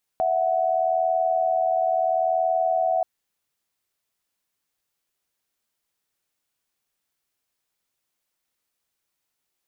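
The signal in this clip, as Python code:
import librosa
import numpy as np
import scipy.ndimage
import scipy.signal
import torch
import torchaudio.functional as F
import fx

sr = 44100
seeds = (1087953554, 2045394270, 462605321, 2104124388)

y = fx.chord(sr, length_s=2.83, notes=(76, 78), wave='sine', level_db=-22.0)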